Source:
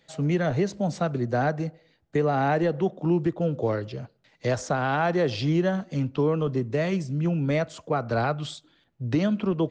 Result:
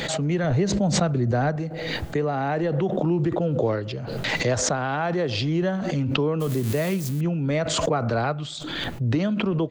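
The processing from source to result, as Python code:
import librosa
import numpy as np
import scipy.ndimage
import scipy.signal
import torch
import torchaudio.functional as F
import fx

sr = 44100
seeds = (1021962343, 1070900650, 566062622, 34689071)

y = fx.crossing_spikes(x, sr, level_db=-26.0, at=(6.4, 7.21))
y = fx.peak_eq(y, sr, hz=5500.0, db=-3.5, octaves=0.27)
y = fx.rider(y, sr, range_db=10, speed_s=0.5)
y = fx.low_shelf(y, sr, hz=120.0, db=9.0, at=(0.44, 1.56))
y = fx.pre_swell(y, sr, db_per_s=26.0)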